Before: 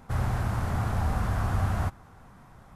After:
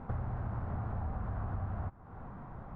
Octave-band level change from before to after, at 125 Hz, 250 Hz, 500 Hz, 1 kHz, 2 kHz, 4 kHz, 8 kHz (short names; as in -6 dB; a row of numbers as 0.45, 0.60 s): -9.0 dB, -8.5 dB, -9.0 dB, -10.0 dB, -15.0 dB, under -25 dB, under -35 dB